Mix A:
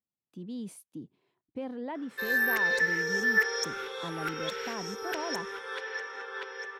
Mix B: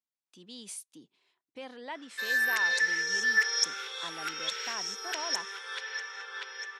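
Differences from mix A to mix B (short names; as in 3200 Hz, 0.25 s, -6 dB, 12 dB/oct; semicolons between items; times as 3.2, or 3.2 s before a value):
background -5.0 dB; master: add weighting filter ITU-R 468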